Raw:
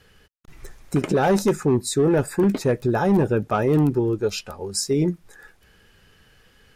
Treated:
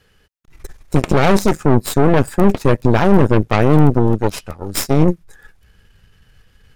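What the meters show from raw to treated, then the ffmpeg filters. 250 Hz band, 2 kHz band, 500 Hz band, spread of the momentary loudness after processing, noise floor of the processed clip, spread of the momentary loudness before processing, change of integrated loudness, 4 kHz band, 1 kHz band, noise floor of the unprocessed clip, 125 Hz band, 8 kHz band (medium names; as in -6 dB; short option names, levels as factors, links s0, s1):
+6.0 dB, +7.5 dB, +4.5 dB, 9 LU, -56 dBFS, 7 LU, +6.0 dB, +4.0 dB, +7.5 dB, -57 dBFS, +8.5 dB, +1.5 dB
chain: -af "asubboost=boost=3:cutoff=170,aeval=exprs='0.422*(cos(1*acos(clip(val(0)/0.422,-1,1)))-cos(1*PI/2))+0.119*(cos(4*acos(clip(val(0)/0.422,-1,1)))-cos(4*PI/2))+0.0266*(cos(7*acos(clip(val(0)/0.422,-1,1)))-cos(7*PI/2))+0.0376*(cos(8*acos(clip(val(0)/0.422,-1,1)))-cos(8*PI/2))':c=same,volume=1.5"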